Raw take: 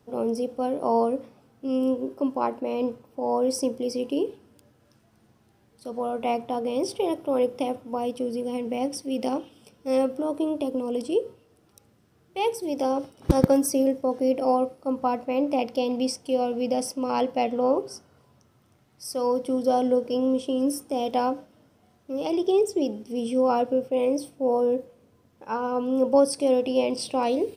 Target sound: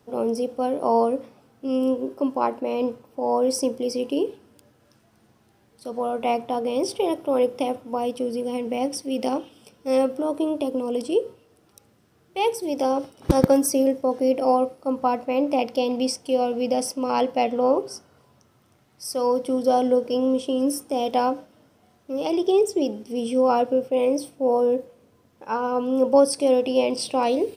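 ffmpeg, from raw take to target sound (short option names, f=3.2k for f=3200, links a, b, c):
-af "lowshelf=f=240:g=-4.5,volume=3.5dB"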